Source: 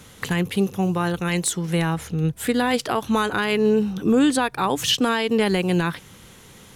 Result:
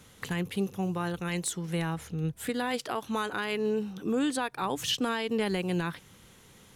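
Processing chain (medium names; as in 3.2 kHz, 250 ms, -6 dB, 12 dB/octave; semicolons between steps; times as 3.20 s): 2.49–4.62 s: bass shelf 130 Hz -10.5 dB; trim -9 dB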